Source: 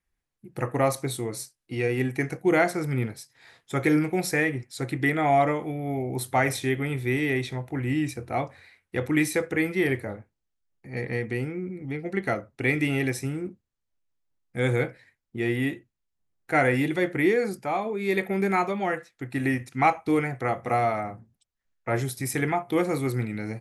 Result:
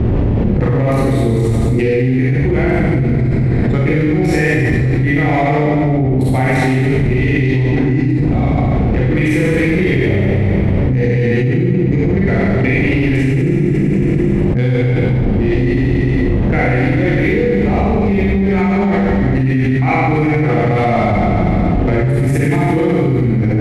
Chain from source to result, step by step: Wiener smoothing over 15 samples; wind noise 360 Hz -40 dBFS; HPF 41 Hz; resonant high shelf 1700 Hz +6.5 dB, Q 1.5; in parallel at +1 dB: limiter -19.5 dBFS, peak gain reduction 14 dB; on the sum: RIAA curve playback; Schroeder reverb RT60 1.7 s, combs from 31 ms, DRR -8.5 dB; fast leveller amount 100%; gain -14 dB

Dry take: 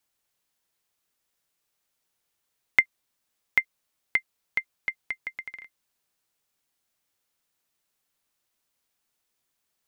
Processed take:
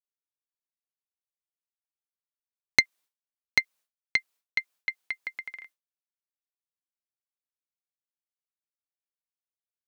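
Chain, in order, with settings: tracing distortion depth 0.11 ms; HPF 440 Hz 6 dB/oct; expander -49 dBFS

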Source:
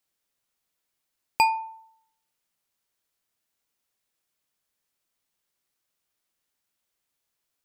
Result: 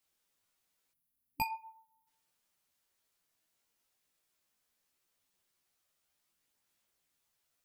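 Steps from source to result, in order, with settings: chorus voices 2, 0.37 Hz, delay 15 ms, depth 4.4 ms; spectral gain 0.94–2.07, 300–9900 Hz -15 dB; gain +3.5 dB

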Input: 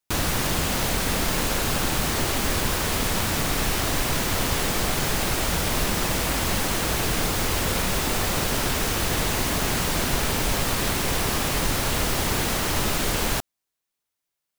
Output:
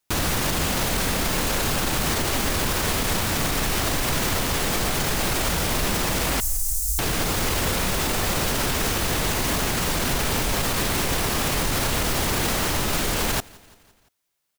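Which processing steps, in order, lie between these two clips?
6.4–6.99 inverse Chebyshev band-stop 180–2300 Hz, stop band 60 dB; limiter -20.5 dBFS, peak gain reduction 10 dB; on a send: feedback echo 0.171 s, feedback 58%, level -24 dB; on the sum: gain +6.5 dB

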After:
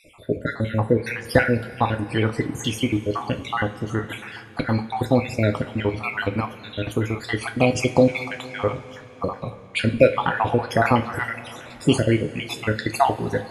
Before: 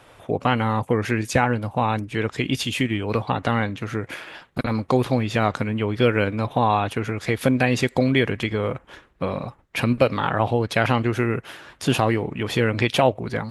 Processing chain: random spectral dropouts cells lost 63%; 11.17–11.86 transient shaper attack -7 dB, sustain +9 dB; two-slope reverb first 0.28 s, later 4.2 s, from -20 dB, DRR 4.5 dB; gain +3 dB

